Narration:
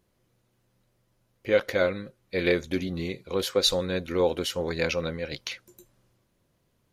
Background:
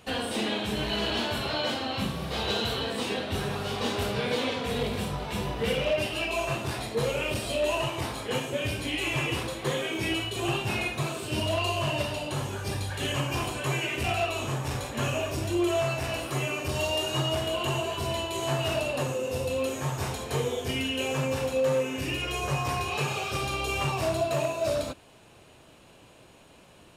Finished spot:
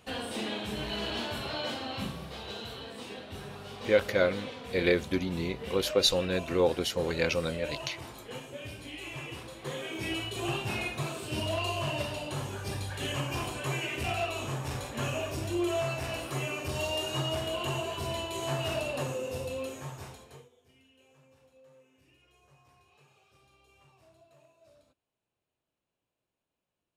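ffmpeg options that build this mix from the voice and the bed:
-filter_complex "[0:a]adelay=2400,volume=-1.5dB[a];[1:a]volume=2.5dB,afade=t=out:st=2.07:d=0.33:silence=0.473151,afade=t=in:st=9.45:d=0.81:silence=0.398107,afade=t=out:st=19.15:d=1.34:silence=0.0316228[b];[a][b]amix=inputs=2:normalize=0"

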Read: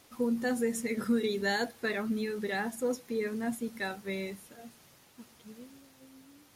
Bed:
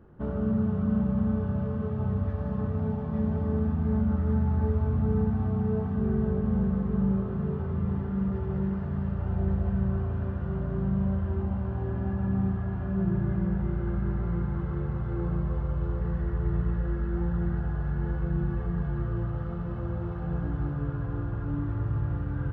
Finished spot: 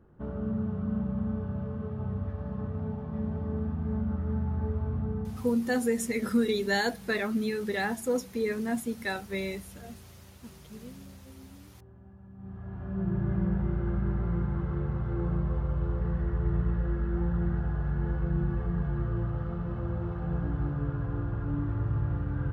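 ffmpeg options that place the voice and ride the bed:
-filter_complex "[0:a]adelay=5250,volume=3dB[a];[1:a]volume=17dB,afade=t=out:st=4.97:d=0.64:silence=0.133352,afade=t=in:st=12.37:d=1.02:silence=0.0794328[b];[a][b]amix=inputs=2:normalize=0"

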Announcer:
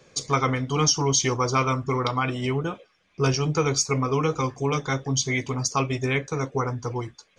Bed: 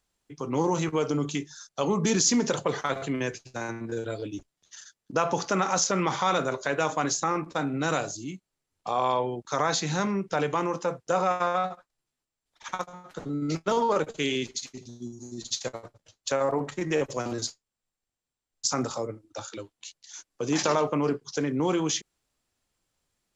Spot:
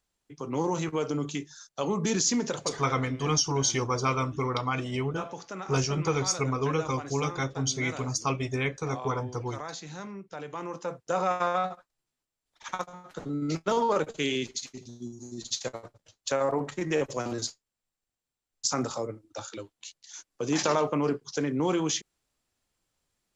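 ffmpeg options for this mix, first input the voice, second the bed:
-filter_complex "[0:a]adelay=2500,volume=-4.5dB[a];[1:a]volume=9dB,afade=t=out:st=2.29:d=0.81:silence=0.316228,afade=t=in:st=10.44:d=0.96:silence=0.251189[b];[a][b]amix=inputs=2:normalize=0"

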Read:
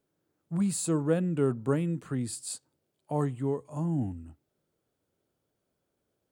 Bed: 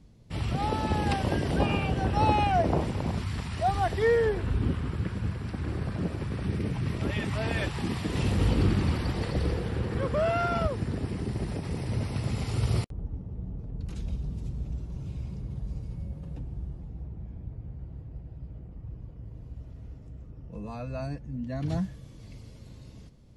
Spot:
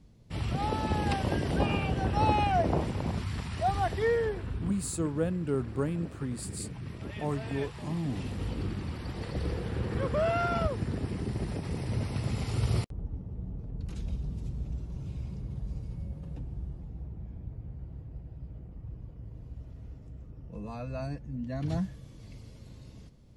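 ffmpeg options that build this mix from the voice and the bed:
-filter_complex "[0:a]adelay=4100,volume=-3.5dB[a];[1:a]volume=6.5dB,afade=t=out:st=3.81:d=0.93:silence=0.398107,afade=t=in:st=8.92:d=1.01:silence=0.375837[b];[a][b]amix=inputs=2:normalize=0"

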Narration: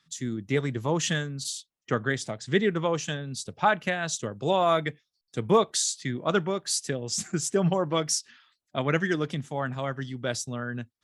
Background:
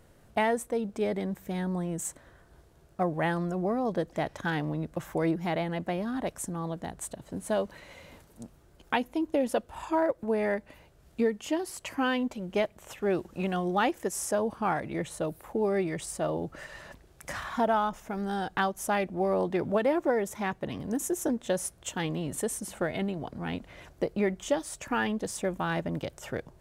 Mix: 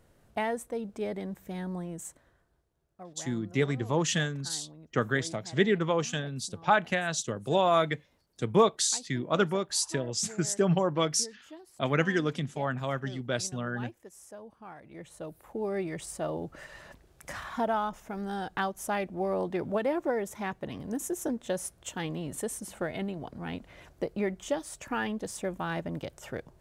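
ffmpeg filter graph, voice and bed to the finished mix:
-filter_complex "[0:a]adelay=3050,volume=-1dB[a];[1:a]volume=11dB,afade=t=out:st=1.77:d=0.85:silence=0.199526,afade=t=in:st=14.76:d=1.21:silence=0.16788[b];[a][b]amix=inputs=2:normalize=0"

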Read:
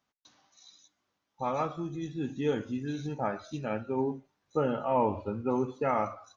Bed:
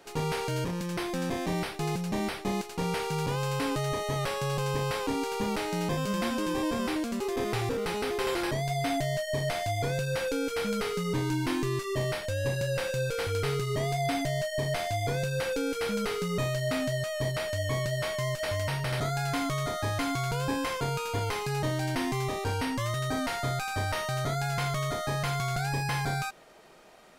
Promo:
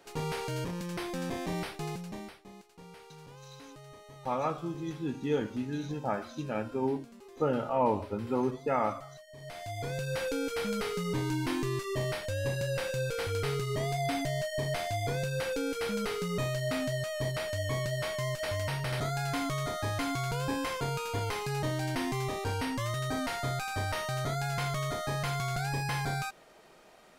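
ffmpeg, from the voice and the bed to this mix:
-filter_complex "[0:a]adelay=2850,volume=-0.5dB[a];[1:a]volume=14dB,afade=t=out:st=1.68:d=0.73:silence=0.149624,afade=t=in:st=9.35:d=0.86:silence=0.125893[b];[a][b]amix=inputs=2:normalize=0"

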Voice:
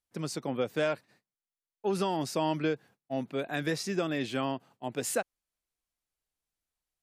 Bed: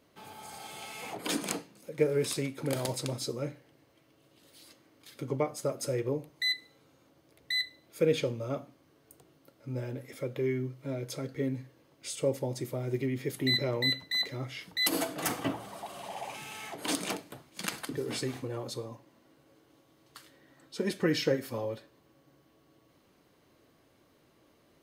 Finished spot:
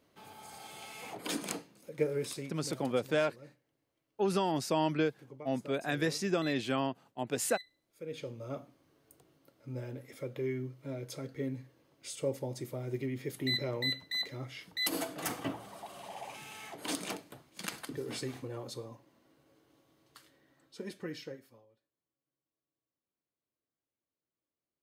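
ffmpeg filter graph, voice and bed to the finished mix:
-filter_complex "[0:a]adelay=2350,volume=-0.5dB[a];[1:a]volume=9.5dB,afade=t=out:st=1.99:d=0.83:silence=0.199526,afade=t=in:st=8.04:d=0.58:silence=0.211349,afade=t=out:st=19.91:d=1.75:silence=0.0421697[b];[a][b]amix=inputs=2:normalize=0"

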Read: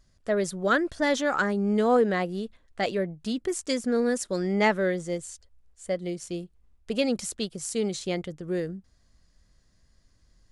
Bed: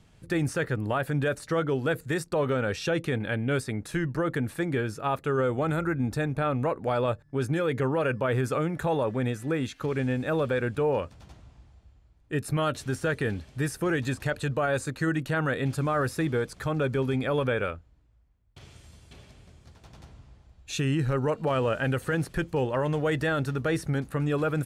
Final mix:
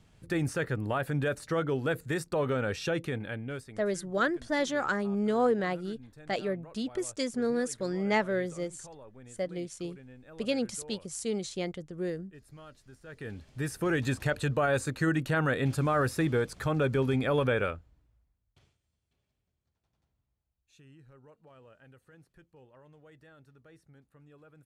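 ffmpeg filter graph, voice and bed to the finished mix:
-filter_complex "[0:a]adelay=3500,volume=-4.5dB[a];[1:a]volume=20dB,afade=t=out:st=2.85:d=1:silence=0.0944061,afade=t=in:st=13.05:d=1.01:silence=0.0707946,afade=t=out:st=17.62:d=1.15:silence=0.0334965[b];[a][b]amix=inputs=2:normalize=0"

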